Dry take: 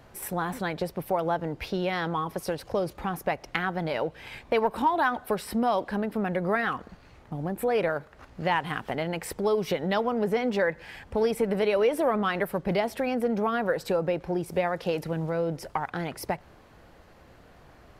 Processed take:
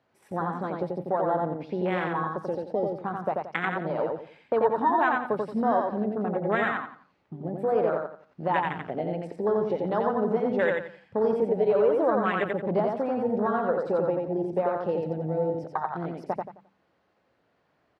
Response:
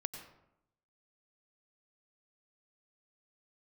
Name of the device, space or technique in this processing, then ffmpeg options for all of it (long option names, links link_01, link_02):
over-cleaned archive recording: -filter_complex "[0:a]highpass=150,lowpass=5100,afwtdn=0.0398,asettb=1/sr,asplit=3[link_01][link_02][link_03];[link_01]atrim=end=9.274[link_04];[link_02]atrim=start=9.27:end=9.7,asetpts=PTS-STARTPTS,afade=type=in:duration=0.004:curve=qsin,afade=type=out:start_time=0.426:duration=0.004:curve=qsin,highshelf=frequency=3600:gain=-9.5[link_05];[link_03]atrim=start=9.696[link_06];[link_04][link_05]acrossfade=duration=0.004:curve1=hsin:curve2=qsin[link_07];[link_07][link_06]acrossfade=duration=0.004:curve1=qsin:curve2=hsin,aecho=1:1:88|176|264|352:0.708|0.205|0.0595|0.0173,bandreject=frequency=48.5:width_type=h:width=4,bandreject=frequency=97:width_type=h:width=4,bandreject=frequency=145.5:width_type=h:width=4,bandreject=frequency=194:width_type=h:width=4,bandreject=frequency=242.5:width_type=h:width=4,bandreject=frequency=291:width_type=h:width=4"